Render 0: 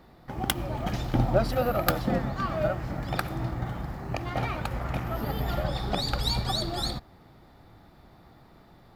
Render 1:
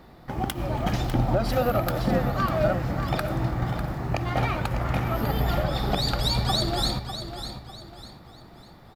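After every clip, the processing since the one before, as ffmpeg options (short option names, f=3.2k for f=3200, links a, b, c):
-af "alimiter=limit=-17.5dB:level=0:latency=1:release=141,aecho=1:1:599|1198|1797|2396:0.316|0.108|0.0366|0.0124,volume=4.5dB"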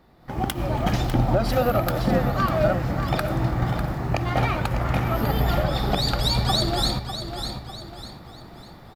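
-af "dynaudnorm=f=190:g=3:m=12.5dB,volume=-7.5dB"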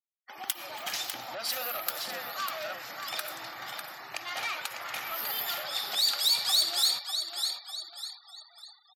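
-filter_complex "[0:a]asplit=2[a][b];[b]highpass=f=720:p=1,volume=14dB,asoftclip=type=tanh:threshold=-9.5dB[c];[a][c]amix=inputs=2:normalize=0,lowpass=f=6.8k:p=1,volume=-6dB,aderivative,afftfilt=real='re*gte(hypot(re,im),0.00447)':imag='im*gte(hypot(re,im),0.00447)':win_size=1024:overlap=0.75"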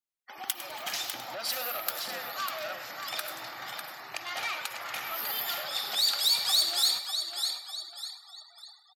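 -af "aecho=1:1:102|204|306|408:0.211|0.0782|0.0289|0.0107"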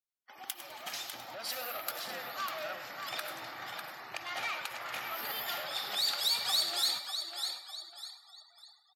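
-filter_complex "[0:a]acrossover=split=3600[a][b];[a]dynaudnorm=f=520:g=7:m=5dB[c];[c][b]amix=inputs=2:normalize=0,volume=-7dB" -ar 44100 -c:a aac -b:a 64k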